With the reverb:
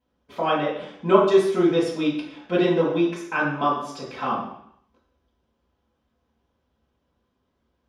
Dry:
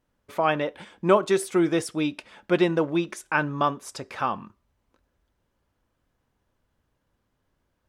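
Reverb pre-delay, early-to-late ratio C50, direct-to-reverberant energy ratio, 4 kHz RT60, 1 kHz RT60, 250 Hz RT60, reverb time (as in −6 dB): 3 ms, 4.0 dB, −9.5 dB, 0.70 s, 0.65 s, 0.70 s, 0.65 s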